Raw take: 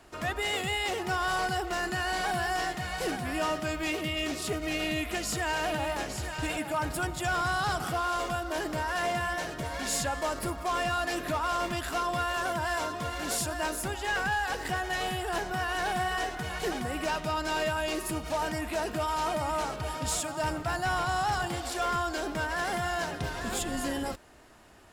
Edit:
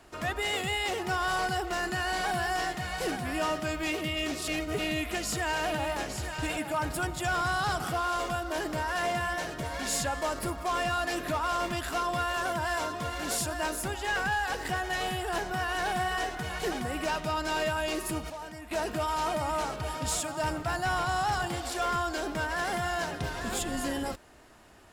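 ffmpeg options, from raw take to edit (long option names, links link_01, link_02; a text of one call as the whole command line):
ffmpeg -i in.wav -filter_complex "[0:a]asplit=5[link_01][link_02][link_03][link_04][link_05];[link_01]atrim=end=4.482[link_06];[link_02]atrim=start=4.478:end=4.792,asetpts=PTS-STARTPTS,areverse[link_07];[link_03]atrim=start=4.788:end=18.302[link_08];[link_04]atrim=start=18.298:end=18.712,asetpts=PTS-STARTPTS,volume=-10.5dB[link_09];[link_05]atrim=start=18.708[link_10];[link_06][link_07]acrossfade=duration=0.004:curve1=hsin:curve2=hsin[link_11];[link_11][link_08]acrossfade=duration=0.004:curve1=hsin:curve2=hsin[link_12];[link_12][link_09]acrossfade=duration=0.004:curve1=hsin:curve2=hsin[link_13];[link_13][link_10]acrossfade=duration=0.004:curve1=hsin:curve2=hsin" out.wav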